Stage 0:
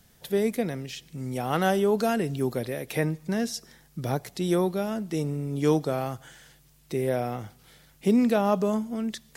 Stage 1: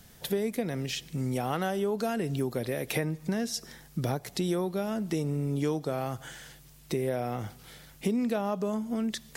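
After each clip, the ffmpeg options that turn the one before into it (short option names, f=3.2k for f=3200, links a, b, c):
-af "acompressor=threshold=-32dB:ratio=5,volume=5dB"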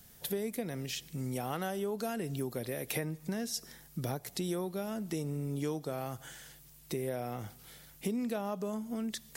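-af "highshelf=f=8.5k:g=10,volume=-6dB"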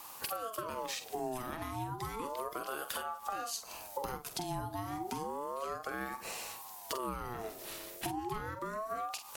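-filter_complex "[0:a]acompressor=threshold=-44dB:ratio=10,asplit=2[a][b];[b]adelay=46,volume=-9dB[c];[a][c]amix=inputs=2:normalize=0,aeval=exprs='val(0)*sin(2*PI*750*n/s+750*0.35/0.32*sin(2*PI*0.32*n/s))':c=same,volume=11dB"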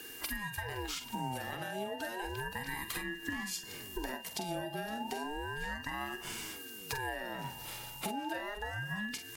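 -af "afftfilt=real='real(if(lt(b,1008),b+24*(1-2*mod(floor(b/24),2)),b),0)':imag='imag(if(lt(b,1008),b+24*(1-2*mod(floor(b/24),2)),b),0)':win_size=2048:overlap=0.75,aeval=exprs='val(0)+0.00316*sin(2*PI*2800*n/s)':c=same,aecho=1:1:515:0.0841"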